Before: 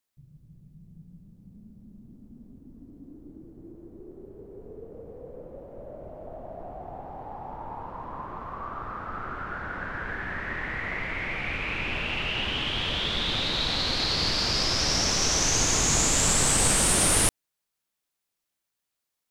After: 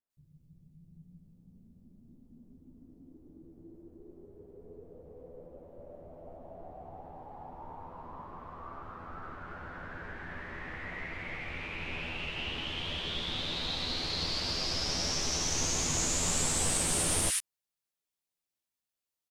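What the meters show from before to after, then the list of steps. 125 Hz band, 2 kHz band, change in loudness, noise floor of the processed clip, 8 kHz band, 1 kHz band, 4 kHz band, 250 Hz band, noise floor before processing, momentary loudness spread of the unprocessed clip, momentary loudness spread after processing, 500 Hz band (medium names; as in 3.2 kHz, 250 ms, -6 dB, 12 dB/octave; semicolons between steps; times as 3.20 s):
-7.5 dB, -9.0 dB, -7.5 dB, under -85 dBFS, -7.5 dB, -9.0 dB, -7.5 dB, -7.5 dB, -83 dBFS, 23 LU, 23 LU, -7.5 dB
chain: doubling 12 ms -5 dB; bands offset in time lows, highs 100 ms, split 1.5 kHz; trim -8.5 dB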